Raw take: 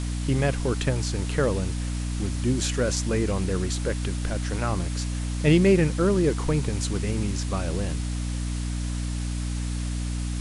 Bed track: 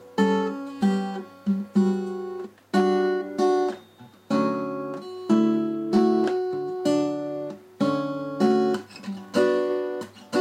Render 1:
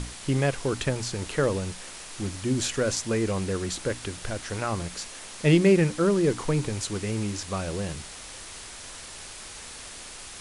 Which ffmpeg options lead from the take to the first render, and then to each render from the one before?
-af "bandreject=f=60:t=h:w=6,bandreject=f=120:t=h:w=6,bandreject=f=180:t=h:w=6,bandreject=f=240:t=h:w=6,bandreject=f=300:t=h:w=6"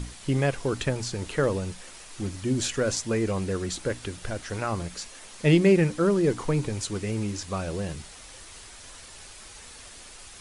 -af "afftdn=nr=6:nf=-42"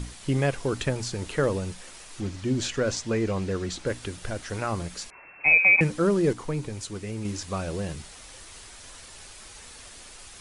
-filter_complex "[0:a]asettb=1/sr,asplit=3[a][b][c];[a]atrim=end=2.204[d];[b]atrim=start=2.2:end=3.87,asetpts=PTS-STARTPTS,afade=t=in:d=0.004:c=qsin,afade=t=out:st=1.666:d=0.004:c=qsin,lowpass=6.6k[e];[c]atrim=start=3.866[f];[d][e]acrossfade=d=0.004:c1=hsin:c2=qsin[g];[g][f]acrossfade=d=0.004:c1=qsin:c2=hsin,asettb=1/sr,asplit=3[h][i][j];[h]atrim=end=5.104[k];[i]atrim=start=5.1:end=5.81,asetpts=PTS-STARTPTS,afade=t=in:d=0.004:c=qsin,afade=t=out:st=0.706:d=0.004:c=qsin,lowpass=f=2.3k:t=q:w=0.5098,lowpass=f=2.3k:t=q:w=0.6013,lowpass=f=2.3k:t=q:w=0.9,lowpass=f=2.3k:t=q:w=2.563,afreqshift=-2700[l];[j]atrim=start=5.806[m];[k][l]acrossfade=d=0.004:c1=hsin:c2=qsin[n];[n][m]acrossfade=d=0.004:c1=qsin:c2=hsin,asplit=3[o][p][q];[o]atrim=end=6.332[r];[p]atrim=start=6.328:end=7.252,asetpts=PTS-STARTPTS,volume=-4.5dB[s];[q]atrim=start=7.248[t];[r][s]acrossfade=d=0.004:c1=hsin:c2=hsin[u];[u][t]acrossfade=d=0.004:c1=hsin:c2=hsin"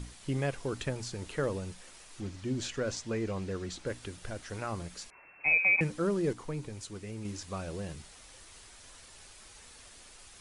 -af "volume=-7.5dB"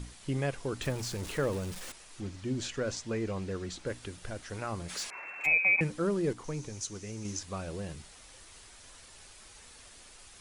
-filter_complex "[0:a]asettb=1/sr,asplit=3[a][b][c];[a]atrim=end=0.824[d];[b]atrim=start=0.82:end=1.92,asetpts=PTS-STARTPTS,afade=t=in:d=0.004:c=qsin,afade=t=out:st=1.096:d=0.004:c=qsin,aeval=exprs='val(0)+0.5*0.0106*sgn(val(0))':c=same[e];[c]atrim=start=1.916[f];[d][e]acrossfade=d=0.004:c1=hsin:c2=qsin[g];[g][f]acrossfade=d=0.004:c1=qsin:c2=hsin,asplit=3[h][i][j];[h]afade=t=out:st=4.88:d=0.02[k];[i]asplit=2[l][m];[m]highpass=f=720:p=1,volume=20dB,asoftclip=type=tanh:threshold=-27dB[n];[l][n]amix=inputs=2:normalize=0,lowpass=f=7.9k:p=1,volume=-6dB,afade=t=in:st=4.88:d=0.02,afade=t=out:st=5.45:d=0.02[o];[j]afade=t=in:st=5.45:d=0.02[p];[k][o][p]amix=inputs=3:normalize=0,asettb=1/sr,asplit=3[q][r][s];[q]atrim=end=6.444[t];[r]atrim=start=6.44:end=7.39,asetpts=PTS-STARTPTS,afade=t=in:d=0.004:c=qsin,afade=t=out:st=0.946:d=0.004:c=qsin,equalizer=f=6.1k:t=o:w=0.47:g=13.5[u];[s]atrim=start=7.386[v];[t][u]acrossfade=d=0.004:c1=hsin:c2=qsin[w];[w][v]acrossfade=d=0.004:c1=qsin:c2=hsin"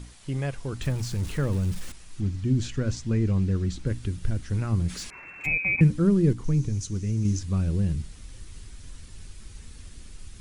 -af "asubboost=boost=10:cutoff=210"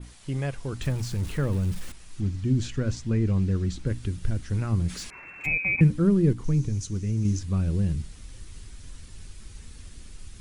-af "adynamicequalizer=threshold=0.00316:dfrequency=6300:dqfactor=0.93:tfrequency=6300:tqfactor=0.93:attack=5:release=100:ratio=0.375:range=2:mode=cutabove:tftype=bell"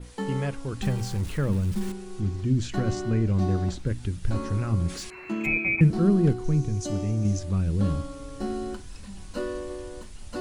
-filter_complex "[1:a]volume=-11dB[a];[0:a][a]amix=inputs=2:normalize=0"

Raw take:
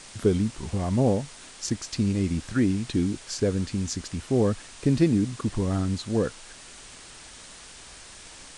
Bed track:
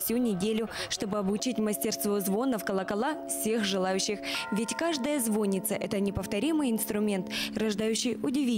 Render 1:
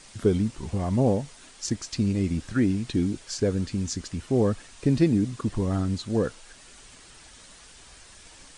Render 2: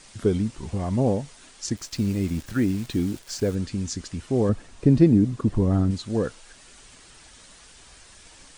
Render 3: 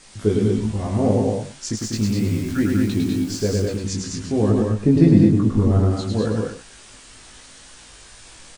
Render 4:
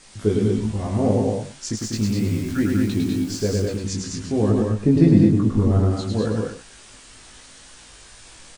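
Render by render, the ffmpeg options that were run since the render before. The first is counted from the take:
-af "afftdn=nr=6:nf=-46"
-filter_complex "[0:a]asplit=3[a][b][c];[a]afade=t=out:st=1.76:d=0.02[d];[b]acrusher=bits=8:dc=4:mix=0:aa=0.000001,afade=t=in:st=1.76:d=0.02,afade=t=out:st=3.54:d=0.02[e];[c]afade=t=in:st=3.54:d=0.02[f];[d][e][f]amix=inputs=3:normalize=0,asettb=1/sr,asplit=3[g][h][i];[g]atrim=end=4.494[j];[h]atrim=start=4.49:end=5.91,asetpts=PTS-STARTPTS,afade=t=in:d=0.004:c=qsin,afade=t=out:st=1.416:d=0.004:c=qsin,tiltshelf=f=1.1k:g=5.5[k];[i]atrim=start=5.906[l];[j][k]acrossfade=d=0.004:c1=hsin:c2=qsin[m];[m][l]acrossfade=d=0.004:c1=qsin:c2=hsin"
-filter_complex "[0:a]asplit=2[a][b];[b]adelay=19,volume=-2.5dB[c];[a][c]amix=inputs=2:normalize=0,asplit=2[d][e];[e]aecho=0:1:104|196|223|320:0.668|0.562|0.501|0.168[f];[d][f]amix=inputs=2:normalize=0"
-af "volume=-1dB"

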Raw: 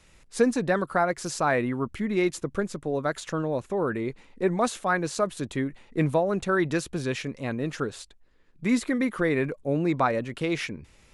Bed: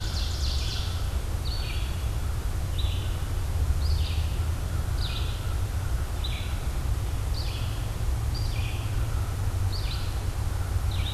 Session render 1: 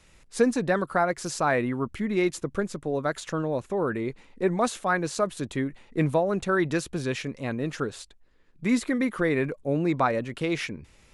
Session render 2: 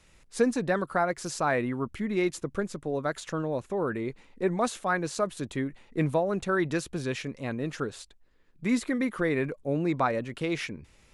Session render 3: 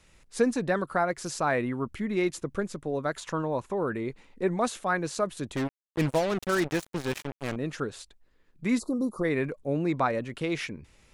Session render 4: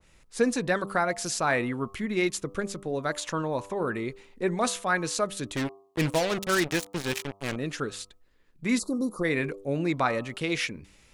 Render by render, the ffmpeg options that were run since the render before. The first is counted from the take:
-af anull
-af "volume=-2.5dB"
-filter_complex "[0:a]asettb=1/sr,asplit=3[a][b][c];[a]atrim=end=3.194[d];[b]atrim=start=3.19:end=3.74,asetpts=PTS-STARTPTS,afade=t=in:d=0.004:c=qsin,afade=t=out:st=0.546:d=0.004:c=qsin,equalizer=f=970:w=3.4:g=9.5[e];[c]atrim=start=3.736[f];[d][e]acrossfade=d=0.004:c1=hsin:c2=qsin[g];[g][f]acrossfade=d=0.004:c1=qsin:c2=hsin,asettb=1/sr,asplit=3[h][i][j];[h]atrim=end=5.564[k];[i]atrim=start=5.56:end=7.56,asetpts=PTS-STARTPTS,afade=t=in:d=0.004:c=qsin,afade=t=out:st=1.996:d=0.004:c=qsin,acrusher=bits=4:mix=0:aa=0.5[l];[j]atrim=start=7.556[m];[k][l]acrossfade=d=0.004:c1=hsin:c2=qsin[n];[n][m]acrossfade=d=0.004:c1=qsin:c2=hsin,asplit=3[o][p][q];[o]afade=t=out:st=8.78:d=0.02[r];[p]asuperstop=centerf=2300:order=12:qfactor=0.72,afade=t=in:st=8.78:d=0.02,afade=t=out:st=9.23:d=0.02[s];[q]afade=t=in:st=9.23:d=0.02[t];[r][s][t]amix=inputs=3:normalize=0"
-af "bandreject=f=98.71:t=h:w=4,bandreject=f=197.42:t=h:w=4,bandreject=f=296.13:t=h:w=4,bandreject=f=394.84:t=h:w=4,bandreject=f=493.55:t=h:w=4,bandreject=f=592.26:t=h:w=4,bandreject=f=690.97:t=h:w=4,bandreject=f=789.68:t=h:w=4,bandreject=f=888.39:t=h:w=4,bandreject=f=987.1:t=h:w=4,bandreject=f=1.08581k:t=h:w=4,bandreject=f=1.18452k:t=h:w=4,bandreject=f=1.28323k:t=h:w=4,adynamicequalizer=threshold=0.00794:dfrequency=1700:dqfactor=0.7:tfrequency=1700:tqfactor=0.7:attack=5:release=100:ratio=0.375:range=3.5:mode=boostabove:tftype=highshelf"

